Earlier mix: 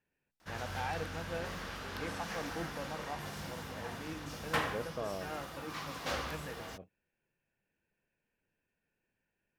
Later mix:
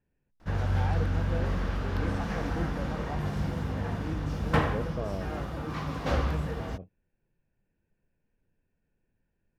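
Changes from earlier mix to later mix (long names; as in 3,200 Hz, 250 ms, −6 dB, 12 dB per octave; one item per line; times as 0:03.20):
background +5.5 dB
master: add spectral tilt −3.5 dB per octave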